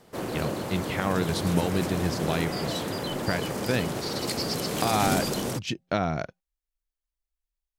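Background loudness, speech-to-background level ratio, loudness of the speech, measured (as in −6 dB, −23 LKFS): −30.5 LKFS, 0.5 dB, −30.0 LKFS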